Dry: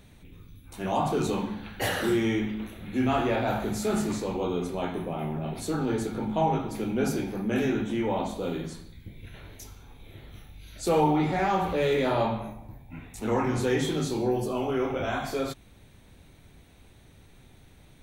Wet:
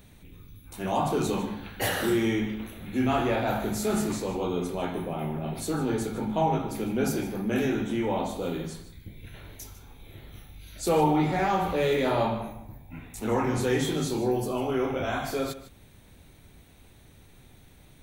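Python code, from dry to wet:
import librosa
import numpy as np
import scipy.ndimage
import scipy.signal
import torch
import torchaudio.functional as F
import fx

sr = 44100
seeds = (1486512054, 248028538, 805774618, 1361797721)

y = fx.high_shelf(x, sr, hz=12000.0, db=10.0)
y = y + 10.0 ** (-15.0 / 20.0) * np.pad(y, (int(152 * sr / 1000.0), 0))[:len(y)]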